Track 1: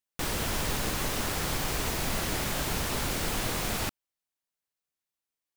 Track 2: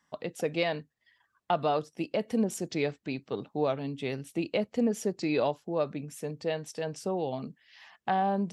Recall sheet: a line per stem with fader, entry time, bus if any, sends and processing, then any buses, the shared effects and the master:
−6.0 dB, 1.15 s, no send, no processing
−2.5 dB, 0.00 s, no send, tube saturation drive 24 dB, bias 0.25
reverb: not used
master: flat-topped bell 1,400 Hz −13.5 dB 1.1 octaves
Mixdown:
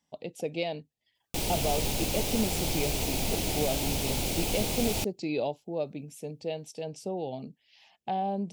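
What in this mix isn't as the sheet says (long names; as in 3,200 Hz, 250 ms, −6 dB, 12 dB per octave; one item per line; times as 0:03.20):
stem 1 −6.0 dB → +1.0 dB
stem 2: missing tube saturation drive 24 dB, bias 0.25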